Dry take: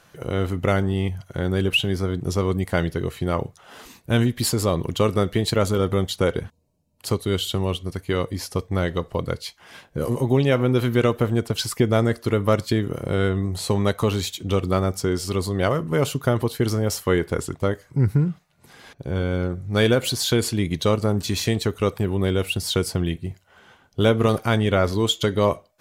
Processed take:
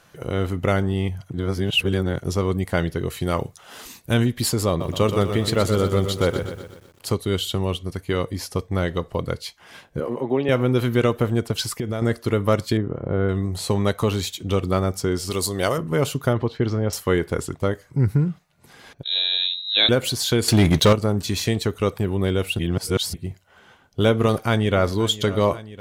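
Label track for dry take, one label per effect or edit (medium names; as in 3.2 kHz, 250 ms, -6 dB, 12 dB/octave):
1.300000	2.240000	reverse
3.100000	4.140000	treble shelf 3.2 kHz +8.5 dB
4.680000	7.080000	bit-crushed delay 123 ms, feedback 55%, word length 8-bit, level -8 dB
10.000000	10.490000	three-band isolator lows -18 dB, under 210 Hz, highs -21 dB, over 3 kHz
11.620000	12.020000	compression, threshold -22 dBFS
12.770000	13.290000	low-pass 1.3 kHz
15.300000	15.780000	tone controls bass -5 dB, treble +12 dB
16.330000	16.930000	distance through air 190 m
19.030000	19.890000	frequency inversion carrier 3.9 kHz
20.480000	20.930000	waveshaping leveller passes 3
22.590000	23.140000	reverse
24.220000	25.040000	echo throw 530 ms, feedback 80%, level -16.5 dB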